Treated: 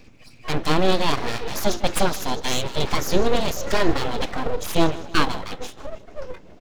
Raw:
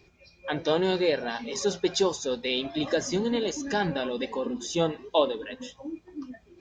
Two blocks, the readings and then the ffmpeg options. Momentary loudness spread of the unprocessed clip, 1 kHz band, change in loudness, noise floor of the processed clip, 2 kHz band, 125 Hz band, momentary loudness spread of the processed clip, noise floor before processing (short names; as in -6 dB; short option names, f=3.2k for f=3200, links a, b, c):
14 LU, +8.0 dB, +4.0 dB, -46 dBFS, +6.0 dB, +9.0 dB, 16 LU, -60 dBFS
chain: -af "lowshelf=f=260:t=q:w=1.5:g=8,aecho=1:1:156|312|468|624:0.133|0.0667|0.0333|0.0167,aeval=exprs='abs(val(0))':c=same,volume=7dB"